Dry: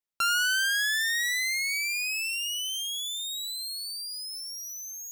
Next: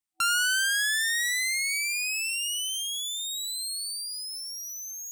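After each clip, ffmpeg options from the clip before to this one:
-af "afftfilt=real='re*(1-between(b*sr/4096,330,750))':imag='im*(1-between(b*sr/4096,330,750))':win_size=4096:overlap=0.75,equalizer=f=8700:t=o:w=0.41:g=7.5"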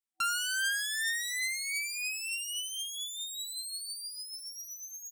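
-af "aecho=1:1:4.4:0.57,volume=0.422"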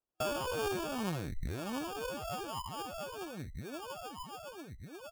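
-af "acrusher=samples=22:mix=1:aa=0.000001,volume=0.668"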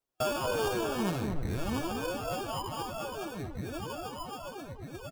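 -filter_complex "[0:a]flanger=delay=7.2:depth=2.8:regen=-43:speed=0.45:shape=triangular,asplit=2[s0][s1];[s1]adelay=230,lowpass=f=820:p=1,volume=0.668,asplit=2[s2][s3];[s3]adelay=230,lowpass=f=820:p=1,volume=0.43,asplit=2[s4][s5];[s5]adelay=230,lowpass=f=820:p=1,volume=0.43,asplit=2[s6][s7];[s7]adelay=230,lowpass=f=820:p=1,volume=0.43,asplit=2[s8][s9];[s9]adelay=230,lowpass=f=820:p=1,volume=0.43[s10];[s0][s2][s4][s6][s8][s10]amix=inputs=6:normalize=0,volume=2.37"

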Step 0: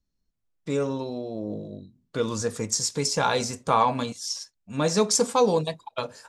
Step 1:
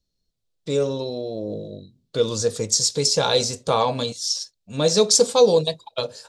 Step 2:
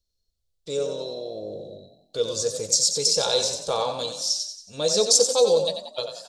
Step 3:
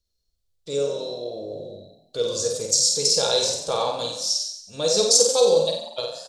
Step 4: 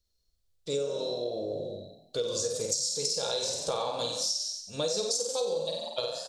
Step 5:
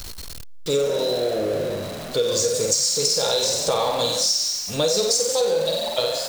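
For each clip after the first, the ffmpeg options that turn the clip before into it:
-af "equalizer=f=125:t=o:w=1:g=4,equalizer=f=250:t=o:w=1:g=-3,equalizer=f=500:t=o:w=1:g=8,equalizer=f=1000:t=o:w=1:g=-4,equalizer=f=2000:t=o:w=1:g=-4,equalizer=f=4000:t=o:w=1:g=11,equalizer=f=8000:t=o:w=1:g=3"
-filter_complex "[0:a]equalizer=f=125:t=o:w=1:g=-11,equalizer=f=250:t=o:w=1:g=-11,equalizer=f=1000:t=o:w=1:g=-6,equalizer=f=2000:t=o:w=1:g=-8,asplit=6[s0][s1][s2][s3][s4][s5];[s1]adelay=91,afreqshift=31,volume=0.398[s6];[s2]adelay=182,afreqshift=62,volume=0.18[s7];[s3]adelay=273,afreqshift=93,volume=0.0804[s8];[s4]adelay=364,afreqshift=124,volume=0.0363[s9];[s5]adelay=455,afreqshift=155,volume=0.0164[s10];[s0][s6][s7][s8][s9][s10]amix=inputs=6:normalize=0"
-filter_complex "[0:a]asplit=2[s0][s1];[s1]adelay=50,volume=0.631[s2];[s0][s2]amix=inputs=2:normalize=0"
-af "acompressor=threshold=0.0447:ratio=12"
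-af "aeval=exprs='val(0)+0.5*0.0158*sgn(val(0))':c=same,volume=2.51"

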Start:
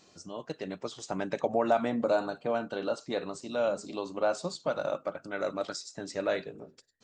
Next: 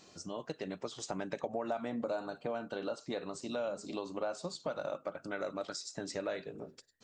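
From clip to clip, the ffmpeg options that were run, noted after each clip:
-af "acompressor=threshold=0.0126:ratio=3,volume=1.19"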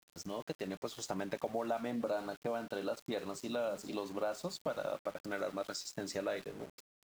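-af "aeval=exprs='val(0)*gte(abs(val(0)),0.00335)':c=same"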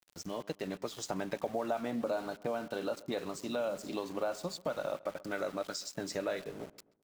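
-filter_complex "[0:a]areverse,acompressor=mode=upward:threshold=0.00224:ratio=2.5,areverse,asplit=2[s0][s1];[s1]adelay=132,lowpass=f=2000:p=1,volume=0.1,asplit=2[s2][s3];[s3]adelay=132,lowpass=f=2000:p=1,volume=0.46,asplit=2[s4][s5];[s5]adelay=132,lowpass=f=2000:p=1,volume=0.46[s6];[s0][s2][s4][s6]amix=inputs=4:normalize=0,volume=1.26"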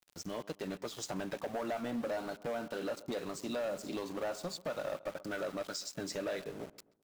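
-af "asoftclip=type=hard:threshold=0.0251"

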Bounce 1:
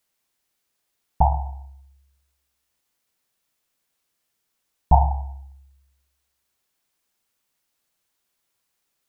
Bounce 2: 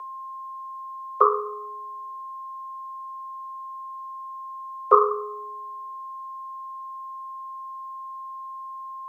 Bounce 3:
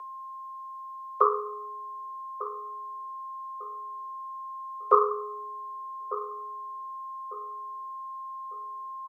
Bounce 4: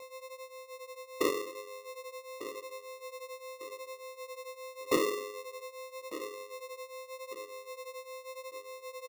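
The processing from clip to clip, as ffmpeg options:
-af "lowshelf=f=92:g=-11,aeval=exprs='val(0)+0.0158*sin(2*PI*710*n/s)':c=same,afreqshift=350,volume=1.26"
-filter_complex "[0:a]asplit=2[s0][s1];[s1]adelay=1199,lowpass=f=1300:p=1,volume=0.251,asplit=2[s2][s3];[s3]adelay=1199,lowpass=f=1300:p=1,volume=0.35,asplit=2[s4][s5];[s5]adelay=1199,lowpass=f=1300:p=1,volume=0.35,asplit=2[s6][s7];[s7]adelay=1199,lowpass=f=1300:p=1,volume=0.35[s8];[s0][s2][s4][s6][s8]amix=inputs=5:normalize=0,volume=0.631"
-af "aresample=11025,asoftclip=type=hard:threshold=0.2,aresample=44100,flanger=delay=20:depth=4.3:speed=0.86,acrusher=samples=28:mix=1:aa=0.000001,volume=0.75"

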